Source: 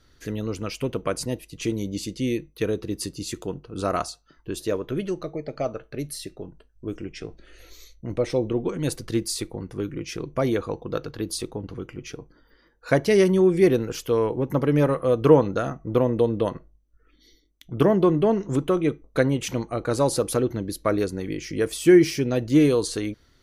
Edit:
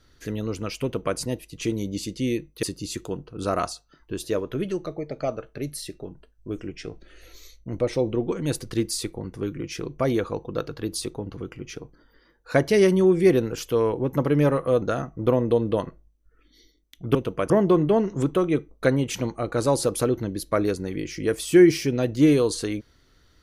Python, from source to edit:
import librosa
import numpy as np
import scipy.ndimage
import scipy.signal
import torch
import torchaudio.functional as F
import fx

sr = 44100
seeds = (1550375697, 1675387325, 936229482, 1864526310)

y = fx.edit(x, sr, fx.duplicate(start_s=0.83, length_s=0.35, to_s=17.83),
    fx.cut(start_s=2.63, length_s=0.37),
    fx.cut(start_s=15.19, length_s=0.31), tone=tone)